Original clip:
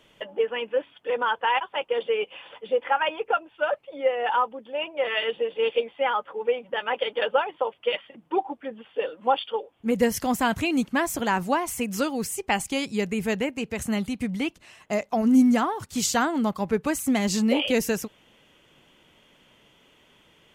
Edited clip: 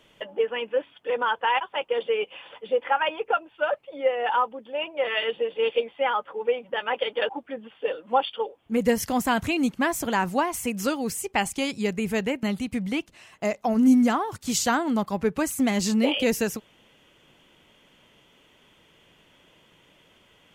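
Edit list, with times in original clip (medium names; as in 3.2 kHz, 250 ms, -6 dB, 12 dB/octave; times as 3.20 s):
7.29–8.43 s: delete
13.57–13.91 s: delete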